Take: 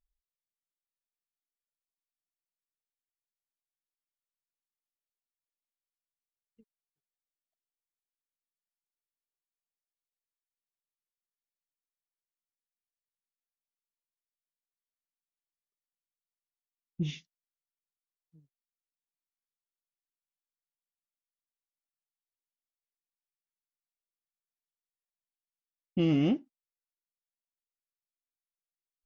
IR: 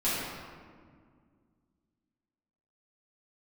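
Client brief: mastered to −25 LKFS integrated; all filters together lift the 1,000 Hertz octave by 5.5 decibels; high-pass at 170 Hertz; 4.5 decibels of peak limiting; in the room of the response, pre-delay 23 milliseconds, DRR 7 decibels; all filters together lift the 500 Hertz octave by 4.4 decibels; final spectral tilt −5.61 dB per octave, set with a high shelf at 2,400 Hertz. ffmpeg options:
-filter_complex "[0:a]highpass=170,equalizer=frequency=500:width_type=o:gain=5.5,equalizer=frequency=1000:width_type=o:gain=4,highshelf=frequency=2400:gain=8.5,alimiter=limit=-19.5dB:level=0:latency=1,asplit=2[link_01][link_02];[1:a]atrim=start_sample=2205,adelay=23[link_03];[link_02][link_03]afir=irnorm=-1:irlink=0,volume=-17.5dB[link_04];[link_01][link_04]amix=inputs=2:normalize=0,volume=8dB"

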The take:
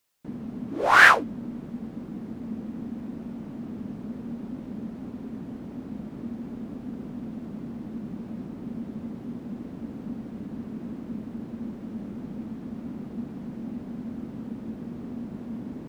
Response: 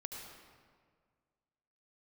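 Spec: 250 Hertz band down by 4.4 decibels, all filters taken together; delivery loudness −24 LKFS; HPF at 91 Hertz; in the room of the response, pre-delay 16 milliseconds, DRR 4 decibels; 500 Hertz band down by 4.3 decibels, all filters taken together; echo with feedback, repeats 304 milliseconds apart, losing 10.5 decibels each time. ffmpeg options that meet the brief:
-filter_complex "[0:a]highpass=91,equalizer=frequency=250:width_type=o:gain=-4,equalizer=frequency=500:width_type=o:gain=-4.5,aecho=1:1:304|608|912:0.299|0.0896|0.0269,asplit=2[link_01][link_02];[1:a]atrim=start_sample=2205,adelay=16[link_03];[link_02][link_03]afir=irnorm=-1:irlink=0,volume=-2dB[link_04];[link_01][link_04]amix=inputs=2:normalize=0,volume=-2dB"

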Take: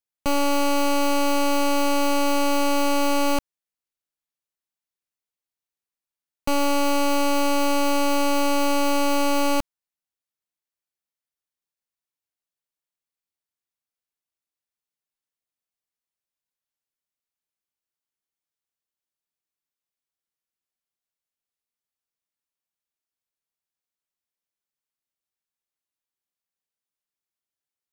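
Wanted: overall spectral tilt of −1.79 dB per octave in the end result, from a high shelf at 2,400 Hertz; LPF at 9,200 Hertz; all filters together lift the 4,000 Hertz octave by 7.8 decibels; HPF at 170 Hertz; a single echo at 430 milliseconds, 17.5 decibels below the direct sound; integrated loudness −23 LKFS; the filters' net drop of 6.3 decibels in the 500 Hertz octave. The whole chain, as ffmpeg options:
ffmpeg -i in.wav -af "highpass=170,lowpass=9200,equalizer=frequency=500:width_type=o:gain=-7.5,highshelf=frequency=2400:gain=4.5,equalizer=frequency=4000:width_type=o:gain=6.5,aecho=1:1:430:0.133,volume=-2dB" out.wav

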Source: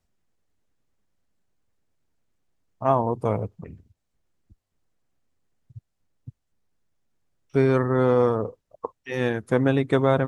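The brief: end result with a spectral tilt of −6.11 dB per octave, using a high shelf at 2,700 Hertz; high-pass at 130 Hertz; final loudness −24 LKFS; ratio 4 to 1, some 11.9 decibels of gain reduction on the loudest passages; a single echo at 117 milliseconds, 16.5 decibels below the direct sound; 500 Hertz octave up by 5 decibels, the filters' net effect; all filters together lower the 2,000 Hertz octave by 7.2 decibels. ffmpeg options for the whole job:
ffmpeg -i in.wav -af "highpass=130,equalizer=frequency=500:width_type=o:gain=6.5,equalizer=frequency=2000:width_type=o:gain=-9,highshelf=frequency=2700:gain=-4,acompressor=threshold=-26dB:ratio=4,aecho=1:1:117:0.15,volume=6.5dB" out.wav

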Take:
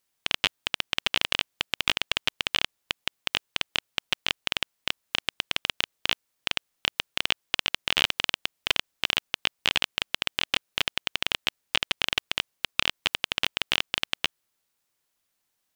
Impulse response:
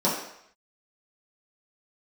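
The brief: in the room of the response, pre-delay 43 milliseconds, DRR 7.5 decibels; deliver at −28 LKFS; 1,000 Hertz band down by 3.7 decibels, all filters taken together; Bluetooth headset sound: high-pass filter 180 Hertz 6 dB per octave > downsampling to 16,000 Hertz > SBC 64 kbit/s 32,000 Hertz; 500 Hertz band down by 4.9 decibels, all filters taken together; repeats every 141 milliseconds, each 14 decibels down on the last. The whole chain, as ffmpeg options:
-filter_complex "[0:a]equalizer=frequency=500:width_type=o:gain=-4.5,equalizer=frequency=1000:width_type=o:gain=-3.5,aecho=1:1:141|282:0.2|0.0399,asplit=2[link_01][link_02];[1:a]atrim=start_sample=2205,adelay=43[link_03];[link_02][link_03]afir=irnorm=-1:irlink=0,volume=-21.5dB[link_04];[link_01][link_04]amix=inputs=2:normalize=0,highpass=frequency=180:poles=1,aresample=16000,aresample=44100" -ar 32000 -c:a sbc -b:a 64k

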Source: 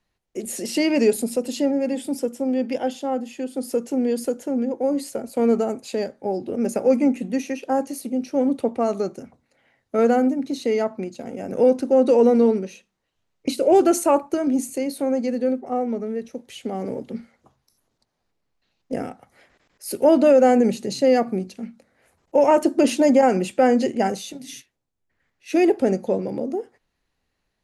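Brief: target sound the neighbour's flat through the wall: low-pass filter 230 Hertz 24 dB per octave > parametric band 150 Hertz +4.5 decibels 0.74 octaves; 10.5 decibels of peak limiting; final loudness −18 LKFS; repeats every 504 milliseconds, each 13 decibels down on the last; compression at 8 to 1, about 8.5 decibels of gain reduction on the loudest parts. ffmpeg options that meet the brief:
ffmpeg -i in.wav -af "acompressor=threshold=-20dB:ratio=8,alimiter=limit=-21dB:level=0:latency=1,lowpass=frequency=230:width=0.5412,lowpass=frequency=230:width=1.3066,equalizer=frequency=150:width_type=o:width=0.74:gain=4.5,aecho=1:1:504|1008|1512:0.224|0.0493|0.0108,volume=19.5dB" out.wav

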